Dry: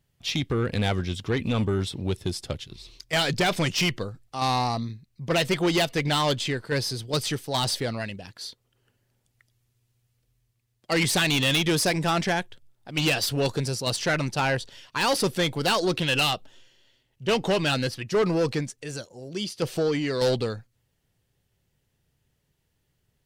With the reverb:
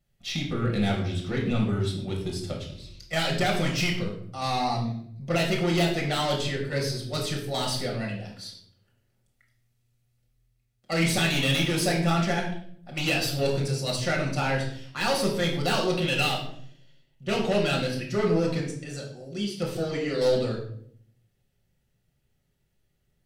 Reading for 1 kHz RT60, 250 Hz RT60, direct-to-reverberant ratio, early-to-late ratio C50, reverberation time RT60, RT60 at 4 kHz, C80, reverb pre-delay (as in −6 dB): 0.55 s, 0.90 s, −2.0 dB, 6.0 dB, 0.60 s, 0.45 s, 9.0 dB, 5 ms